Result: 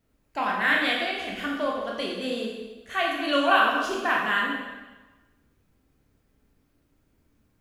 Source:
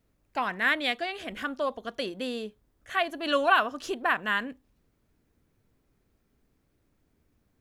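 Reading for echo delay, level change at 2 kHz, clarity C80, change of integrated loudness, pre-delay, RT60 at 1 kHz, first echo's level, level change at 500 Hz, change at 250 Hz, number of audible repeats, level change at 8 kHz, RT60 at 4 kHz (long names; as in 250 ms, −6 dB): no echo audible, +3.5 dB, 3.5 dB, +3.5 dB, 7 ms, 1.2 s, no echo audible, +2.5 dB, +5.0 dB, no echo audible, +3.5 dB, 1.1 s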